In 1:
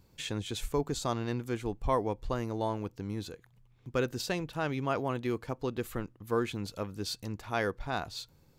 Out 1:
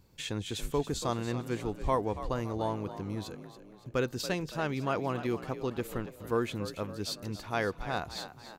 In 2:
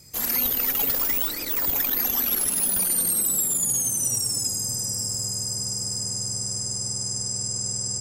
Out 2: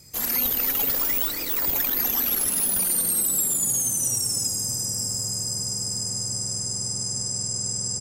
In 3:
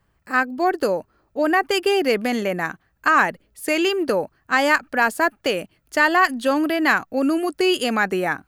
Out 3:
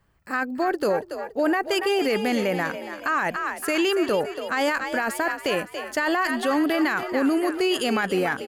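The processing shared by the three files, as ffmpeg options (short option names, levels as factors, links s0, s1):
-filter_complex "[0:a]asplit=6[s0][s1][s2][s3][s4][s5];[s1]adelay=282,afreqshift=46,volume=0.237[s6];[s2]adelay=564,afreqshift=92,volume=0.119[s7];[s3]adelay=846,afreqshift=138,volume=0.0596[s8];[s4]adelay=1128,afreqshift=184,volume=0.0295[s9];[s5]adelay=1410,afreqshift=230,volume=0.0148[s10];[s0][s6][s7][s8][s9][s10]amix=inputs=6:normalize=0,alimiter=limit=0.188:level=0:latency=1:release=13"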